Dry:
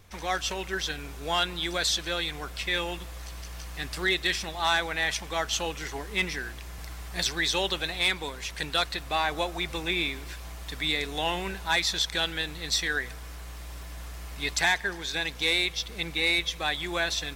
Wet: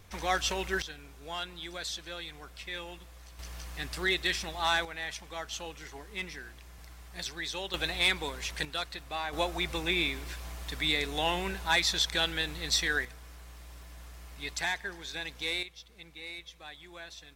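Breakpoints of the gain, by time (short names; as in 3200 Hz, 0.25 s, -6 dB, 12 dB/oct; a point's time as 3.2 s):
0 dB
from 0.82 s -11 dB
from 3.39 s -3 dB
from 4.85 s -10 dB
from 7.74 s -1 dB
from 8.65 s -8.5 dB
from 9.33 s -1 dB
from 13.05 s -8 dB
from 15.63 s -18 dB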